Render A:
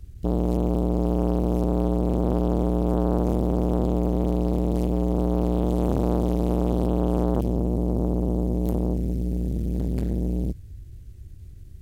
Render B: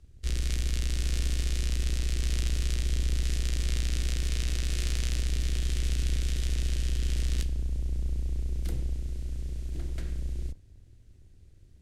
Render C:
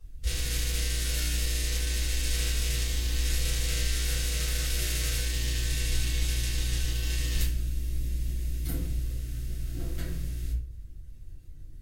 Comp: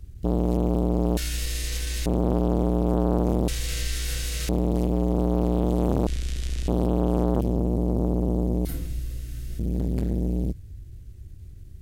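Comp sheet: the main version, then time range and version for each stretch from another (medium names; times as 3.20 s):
A
1.17–2.06 s: from C
3.48–4.49 s: from C
6.07–6.68 s: from B
8.65–9.59 s: from C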